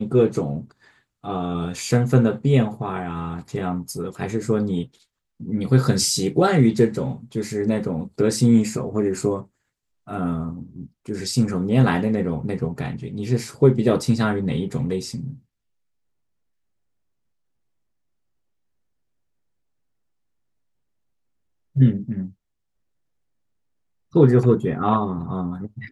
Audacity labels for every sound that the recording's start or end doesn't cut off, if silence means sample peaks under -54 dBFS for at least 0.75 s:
21.750000	22.330000	sound